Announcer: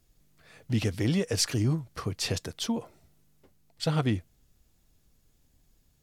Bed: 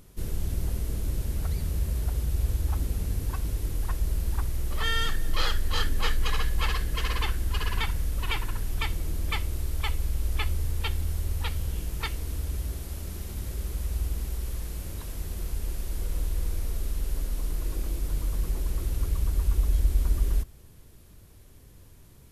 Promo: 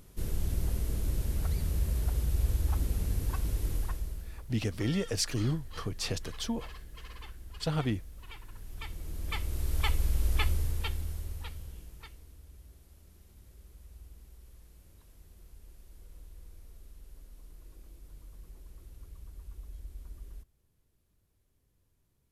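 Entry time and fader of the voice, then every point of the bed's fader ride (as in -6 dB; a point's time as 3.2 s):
3.80 s, -4.0 dB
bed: 3.76 s -2 dB
4.43 s -18.5 dB
8.38 s -18.5 dB
9.78 s 0 dB
10.45 s 0 dB
12.36 s -21.5 dB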